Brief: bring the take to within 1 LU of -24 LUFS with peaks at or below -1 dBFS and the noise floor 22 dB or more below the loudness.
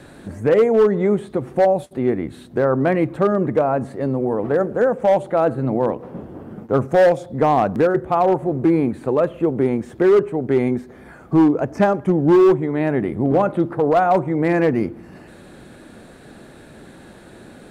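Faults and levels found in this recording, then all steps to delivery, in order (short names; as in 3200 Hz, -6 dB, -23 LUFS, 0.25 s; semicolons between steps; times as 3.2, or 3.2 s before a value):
clipped 2.6%; flat tops at -9.0 dBFS; loudness -18.5 LUFS; peak -9.0 dBFS; loudness target -24.0 LUFS
-> clip repair -9 dBFS; gain -5.5 dB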